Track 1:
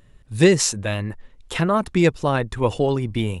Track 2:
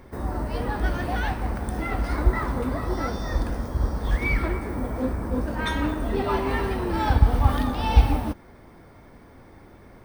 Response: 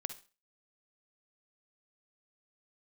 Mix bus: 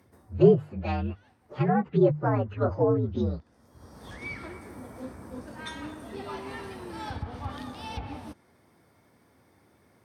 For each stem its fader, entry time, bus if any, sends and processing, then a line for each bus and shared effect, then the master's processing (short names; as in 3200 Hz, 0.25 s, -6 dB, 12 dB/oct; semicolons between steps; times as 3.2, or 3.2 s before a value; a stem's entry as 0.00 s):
-1.0 dB, 0.00 s, no send, inharmonic rescaling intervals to 122%; low-pass opened by the level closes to 520 Hz, open at -17 dBFS; notches 50/100/150 Hz
-13.0 dB, 0.00 s, no send, high shelf 4100 Hz +11.5 dB; auto duck -22 dB, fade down 0.35 s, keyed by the first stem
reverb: off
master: treble ducked by the level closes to 930 Hz, closed at -19.5 dBFS; HPF 84 Hz 24 dB/oct